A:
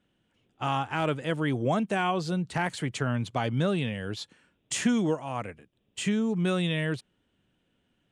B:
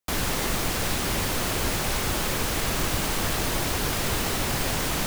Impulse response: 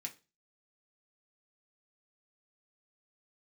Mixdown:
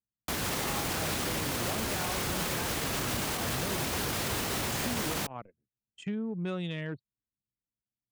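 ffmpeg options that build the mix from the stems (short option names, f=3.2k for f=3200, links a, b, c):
-filter_complex "[0:a]equalizer=f=5.4k:w=6.2:g=2.5,asoftclip=type=hard:threshold=-20dB,volume=-7dB[a];[1:a]adelay=200,volume=-0.5dB[b];[a][b]amix=inputs=2:normalize=0,highpass=69,anlmdn=1.58,alimiter=limit=-22.5dB:level=0:latency=1:release=63"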